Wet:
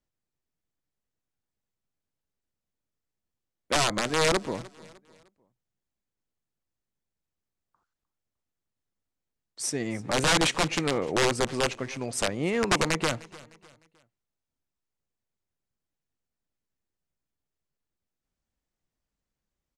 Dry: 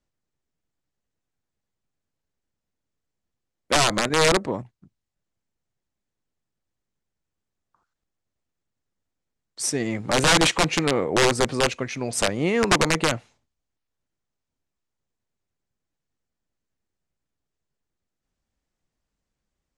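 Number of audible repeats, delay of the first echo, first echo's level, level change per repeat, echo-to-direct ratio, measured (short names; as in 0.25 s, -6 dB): 2, 0.304 s, -21.0 dB, -8.0 dB, -20.5 dB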